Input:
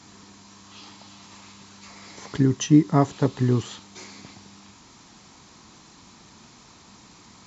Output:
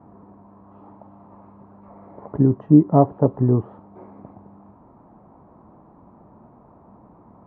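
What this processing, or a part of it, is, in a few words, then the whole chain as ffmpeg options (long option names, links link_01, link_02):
under water: -af "lowpass=frequency=1000:width=0.5412,lowpass=frequency=1000:width=1.3066,equalizer=frequency=610:width_type=o:width=0.58:gain=7,volume=3dB"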